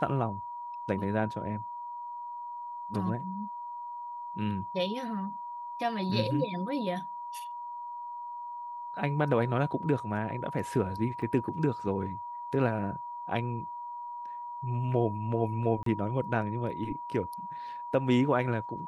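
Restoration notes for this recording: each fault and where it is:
whistle 960 Hz −37 dBFS
0:11.22: drop-out 2.8 ms
0:15.83–0:15.86: drop-out 33 ms

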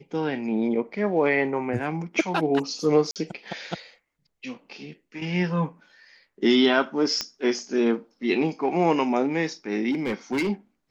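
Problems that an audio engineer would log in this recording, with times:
0:03.11–0:03.16: drop-out 48 ms
0:07.21: click −12 dBFS
0:09.91–0:10.50: clipping −21.5 dBFS

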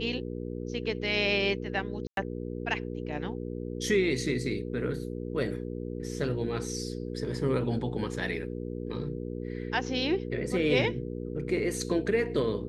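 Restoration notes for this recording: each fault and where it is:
mains hum 60 Hz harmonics 8 −36 dBFS
0:02.07–0:02.17: drop-out 102 ms

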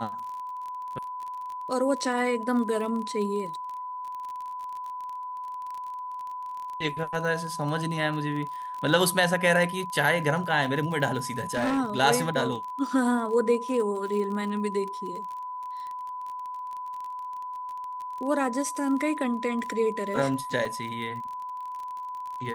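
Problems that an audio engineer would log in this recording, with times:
surface crackle 32 per second −34 dBFS
whistle 1,000 Hz −33 dBFS
0:11.30–0:11.79: clipping −22.5 dBFS
0:20.65: drop-out 3.3 ms

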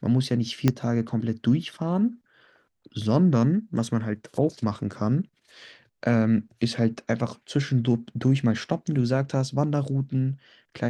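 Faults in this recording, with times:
0:00.68: click −7 dBFS

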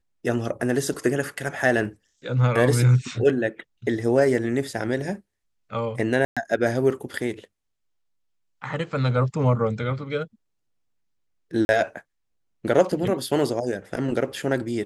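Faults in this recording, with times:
0:06.25–0:06.37: drop-out 116 ms
0:11.65–0:11.69: drop-out 41 ms

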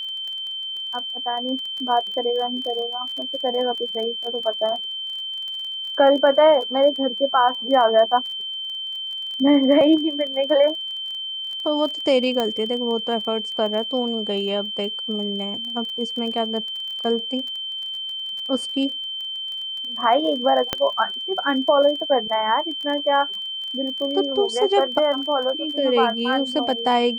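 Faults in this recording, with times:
surface crackle 21 per second −30 dBFS
whistle 3,100 Hz −27 dBFS
0:12.40: click −10 dBFS
0:20.73: click −6 dBFS

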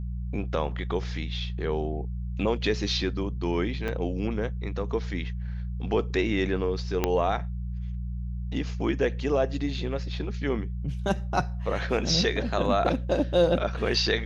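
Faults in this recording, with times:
mains hum 60 Hz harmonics 3 −32 dBFS
0:03.88: drop-out 4.7 ms
0:07.04: click −9 dBFS

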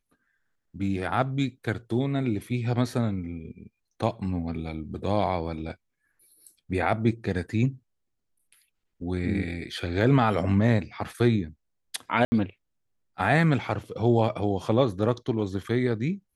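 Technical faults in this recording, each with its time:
0:12.25–0:12.32: drop-out 70 ms

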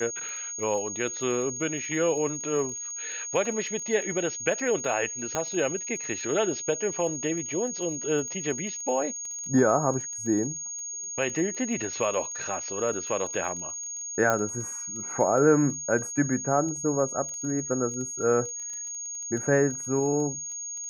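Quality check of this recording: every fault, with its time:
surface crackle 19 per second −35 dBFS
whistle 6,600 Hz −33 dBFS
0:05.35: click −13 dBFS
0:14.30: click −11 dBFS

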